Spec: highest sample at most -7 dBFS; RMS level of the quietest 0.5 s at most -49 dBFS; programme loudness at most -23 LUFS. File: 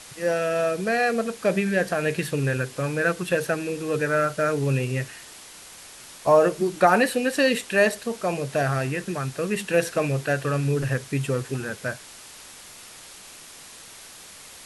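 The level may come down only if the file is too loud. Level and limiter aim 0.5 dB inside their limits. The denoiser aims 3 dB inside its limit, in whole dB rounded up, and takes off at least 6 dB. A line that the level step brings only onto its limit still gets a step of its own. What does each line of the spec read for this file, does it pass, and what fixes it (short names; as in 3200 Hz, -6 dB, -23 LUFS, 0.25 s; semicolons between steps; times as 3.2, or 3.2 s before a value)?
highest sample -5.0 dBFS: fail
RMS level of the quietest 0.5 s -45 dBFS: fail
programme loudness -24.0 LUFS: OK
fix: denoiser 7 dB, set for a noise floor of -45 dBFS; limiter -7.5 dBFS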